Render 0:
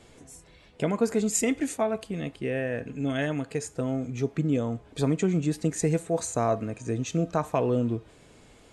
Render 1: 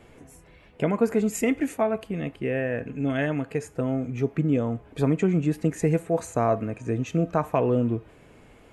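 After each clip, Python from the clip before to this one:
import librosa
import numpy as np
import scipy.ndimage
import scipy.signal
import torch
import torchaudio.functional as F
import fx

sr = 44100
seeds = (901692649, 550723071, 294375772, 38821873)

y = fx.band_shelf(x, sr, hz=5700.0, db=-10.0, octaves=1.7)
y = F.gain(torch.from_numpy(y), 2.5).numpy()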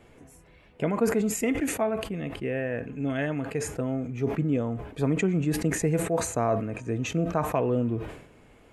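y = fx.sustainer(x, sr, db_per_s=79.0)
y = F.gain(torch.from_numpy(y), -3.0).numpy()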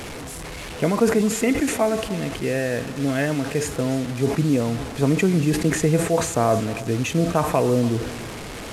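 y = fx.delta_mod(x, sr, bps=64000, step_db=-34.0)
y = y + 10.0 ** (-16.5 / 20.0) * np.pad(y, (int(292 * sr / 1000.0), 0))[:len(y)]
y = F.gain(torch.from_numpy(y), 6.0).numpy()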